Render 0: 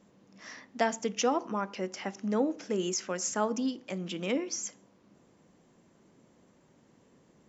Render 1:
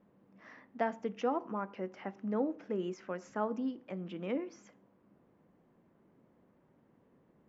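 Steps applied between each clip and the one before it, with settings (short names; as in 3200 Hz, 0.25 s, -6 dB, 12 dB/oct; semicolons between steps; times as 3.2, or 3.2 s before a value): LPF 1800 Hz 12 dB/oct; gain -4.5 dB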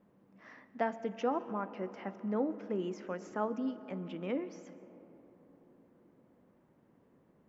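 reverb RT60 4.2 s, pre-delay 0.1 s, DRR 15 dB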